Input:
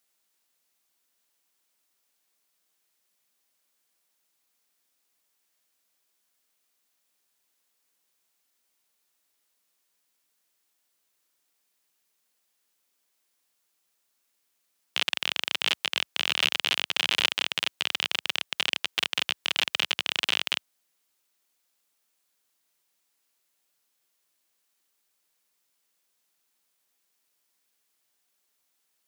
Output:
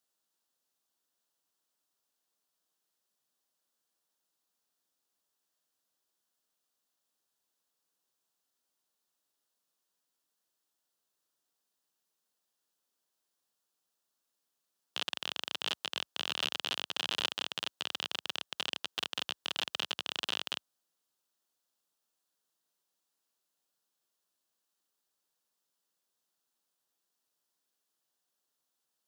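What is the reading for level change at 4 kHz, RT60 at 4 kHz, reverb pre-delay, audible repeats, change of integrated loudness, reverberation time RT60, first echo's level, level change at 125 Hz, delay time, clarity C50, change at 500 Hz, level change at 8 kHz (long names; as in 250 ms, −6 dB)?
−8.5 dB, no reverb audible, no reverb audible, no echo audible, −9.0 dB, no reverb audible, no echo audible, can't be measured, no echo audible, no reverb audible, −5.0 dB, −8.5 dB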